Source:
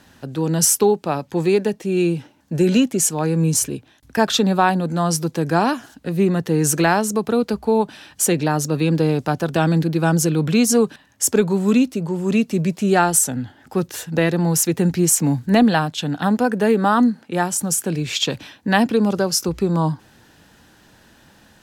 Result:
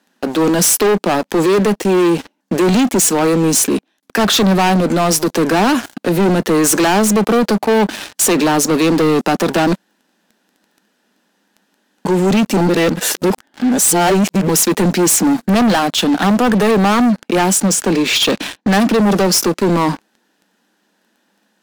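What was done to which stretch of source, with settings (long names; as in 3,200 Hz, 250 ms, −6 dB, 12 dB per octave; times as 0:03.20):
0:09.73–0:12.05: fill with room tone
0:12.57–0:14.49: reverse
0:17.58–0:18.78: low-pass filter 5,900 Hz
whole clip: elliptic high-pass filter 190 Hz, stop band 40 dB; leveller curve on the samples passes 5; brickwall limiter −9.5 dBFS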